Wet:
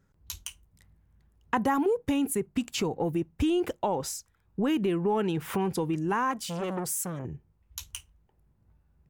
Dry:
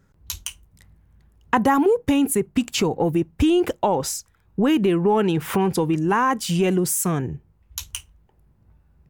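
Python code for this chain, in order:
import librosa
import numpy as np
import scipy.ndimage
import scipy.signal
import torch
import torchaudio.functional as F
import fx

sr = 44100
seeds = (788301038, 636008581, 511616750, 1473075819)

y = fx.transformer_sat(x, sr, knee_hz=820.0, at=(6.31, 7.25))
y = F.gain(torch.from_numpy(y), -8.0).numpy()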